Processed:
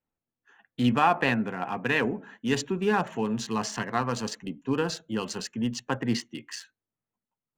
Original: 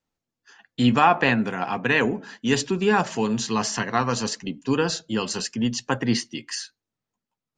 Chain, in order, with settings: Wiener smoothing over 9 samples; gain -4.5 dB

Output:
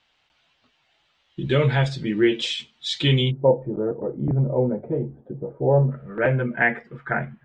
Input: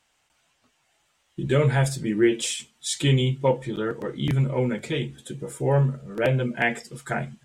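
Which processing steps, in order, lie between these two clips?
ladder low-pass 4700 Hz, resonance 40%, from 3.3 s 850 Hz, from 5.9 s 2100 Hz; gain +9 dB

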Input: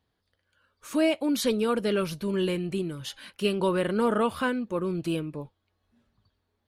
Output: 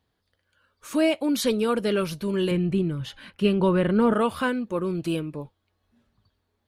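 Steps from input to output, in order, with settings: 2.51–4.13 tone controls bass +8 dB, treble -10 dB; gain +2 dB

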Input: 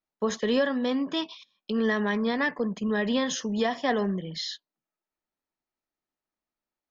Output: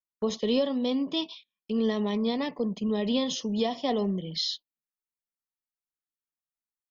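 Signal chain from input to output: gate -45 dBFS, range -13 dB; high shelf 4500 Hz +4 dB, from 4.17 s +10 dB; envelope phaser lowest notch 550 Hz, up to 1600 Hz, full sweep at -30 dBFS

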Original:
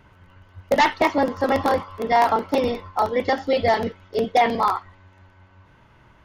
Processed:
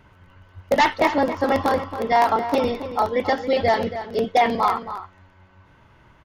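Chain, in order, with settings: outdoor echo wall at 47 m, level -11 dB

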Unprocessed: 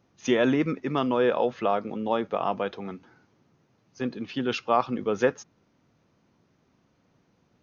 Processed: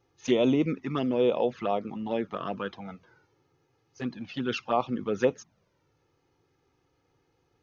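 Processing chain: envelope flanger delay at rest 2.4 ms, full sweep at -19 dBFS

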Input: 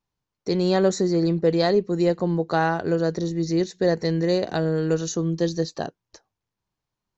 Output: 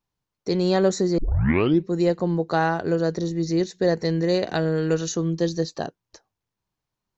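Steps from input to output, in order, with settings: 1.18 tape start 0.71 s; 4.34–5.33 bell 2300 Hz +4.5 dB 1.4 oct

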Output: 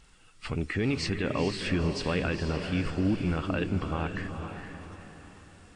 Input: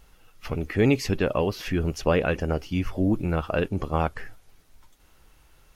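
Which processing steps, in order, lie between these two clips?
nonlinear frequency compression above 3800 Hz 1.5:1; bell 600 Hz -7.5 dB 1.5 oct; limiter -19 dBFS, peak gain reduction 9 dB; low shelf 69 Hz -9 dB; diffused feedback echo 0.47 s, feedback 45%, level -6.5 dB; gain +2 dB

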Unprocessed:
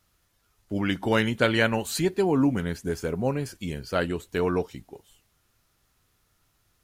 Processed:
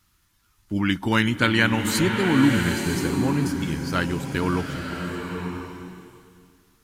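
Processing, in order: band shelf 550 Hz -10 dB 1.1 oct; bloom reverb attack 1.03 s, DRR 3.5 dB; gain +4 dB

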